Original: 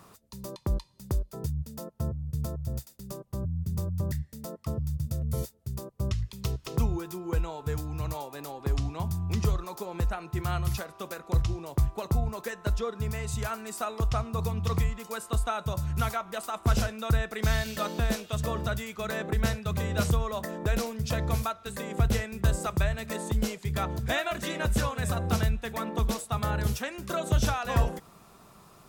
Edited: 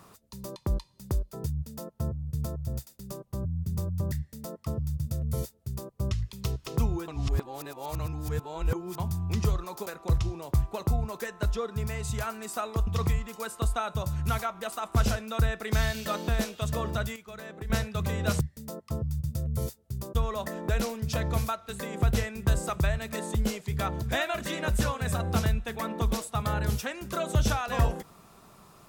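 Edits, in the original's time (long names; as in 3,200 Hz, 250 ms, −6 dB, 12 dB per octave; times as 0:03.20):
0:04.17–0:05.91: duplicate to 0:20.12
0:07.08–0:08.98: reverse
0:09.86–0:11.10: remove
0:14.11–0:14.58: remove
0:18.87–0:19.41: clip gain −10 dB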